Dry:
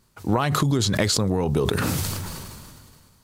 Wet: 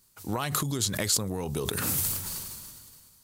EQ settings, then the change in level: pre-emphasis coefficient 0.8; dynamic EQ 4800 Hz, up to -5 dB, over -40 dBFS, Q 0.95; +4.0 dB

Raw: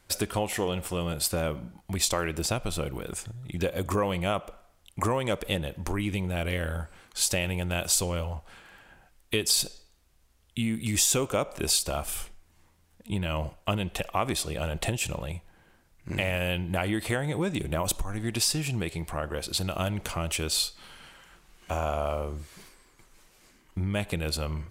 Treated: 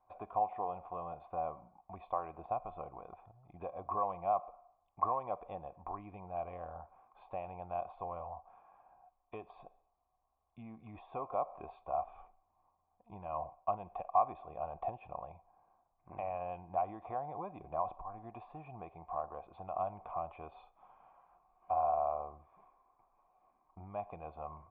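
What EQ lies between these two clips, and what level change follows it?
vocal tract filter a; +5.5 dB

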